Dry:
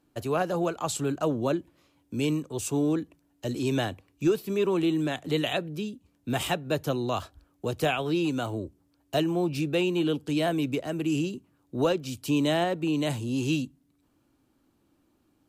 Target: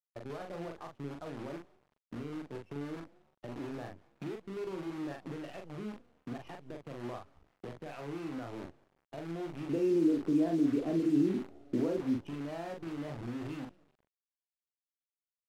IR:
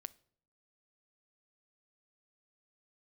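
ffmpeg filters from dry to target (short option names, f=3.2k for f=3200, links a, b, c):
-filter_complex "[0:a]lowpass=f=2.7k:w=0.5412,lowpass=f=2.7k:w=1.3066,acompressor=threshold=-37dB:ratio=4,highpass=f=78:p=1,alimiter=level_in=9.5dB:limit=-24dB:level=0:latency=1:release=303,volume=-9.5dB,asettb=1/sr,asplit=3[a][b][c];[a]atrim=end=9.694[d];[b]atrim=start=9.69:end=12.18,asetpts=PTS-STARTPTS,afade=t=in:d=0.004:c=qsin,afade=t=out:st=2.486:d=0.004:c=qsin,equalizer=f=290:w=0.83:g=14.5[e];[c]atrim=start=12.176[f];[d][e]acrossfade=d=0.004:c1=hsin:c2=qsin[g];[g][f]acrossfade=d=0.004:c1=qsin:c2=hsin,afftdn=nr=21:nf=-46,asplit=4[h][i][j][k];[i]adelay=188,afreqshift=36,volume=-22.5dB[l];[j]adelay=376,afreqshift=72,volume=-29.8dB[m];[k]adelay=564,afreqshift=108,volume=-37.2dB[n];[h][l][m][n]amix=inputs=4:normalize=0,acrusher=bits=8:dc=4:mix=0:aa=0.000001,aemphasis=mode=reproduction:type=75kf,asplit=2[o][p];[p]adelay=42,volume=-4dB[q];[o][q]amix=inputs=2:normalize=0" -ar 48000 -c:a libmp3lame -b:a 80k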